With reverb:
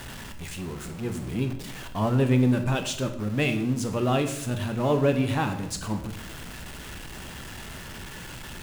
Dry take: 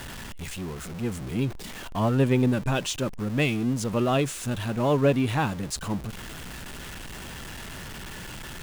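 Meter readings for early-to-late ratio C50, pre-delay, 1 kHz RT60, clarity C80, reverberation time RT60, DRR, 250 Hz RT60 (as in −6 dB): 10.0 dB, 20 ms, 0.65 s, 13.0 dB, 0.75 s, 6.5 dB, 0.90 s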